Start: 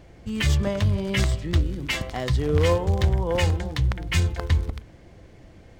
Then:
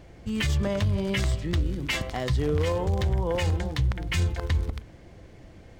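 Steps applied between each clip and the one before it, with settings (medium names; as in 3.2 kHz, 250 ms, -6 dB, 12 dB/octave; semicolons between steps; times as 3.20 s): peak limiter -17 dBFS, peak gain reduction 9 dB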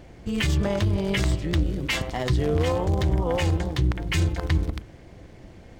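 AM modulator 240 Hz, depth 45%; trim +5 dB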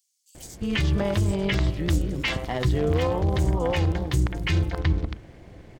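bands offset in time highs, lows 350 ms, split 5.9 kHz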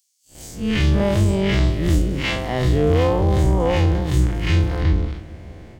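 spectral blur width 93 ms; on a send at -22 dB: reverberation RT60 3.1 s, pre-delay 97 ms; on the sum: trim +7 dB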